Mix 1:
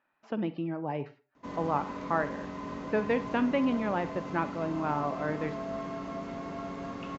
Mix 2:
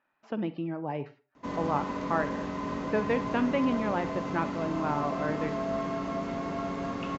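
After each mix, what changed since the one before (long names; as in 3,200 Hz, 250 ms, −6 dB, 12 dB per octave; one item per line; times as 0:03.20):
background +5.0 dB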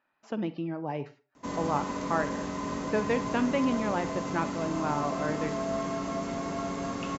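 master: remove low-pass filter 3,800 Hz 12 dB per octave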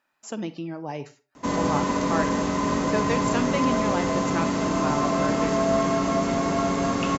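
speech: remove high-frequency loss of the air 270 metres
background +9.5 dB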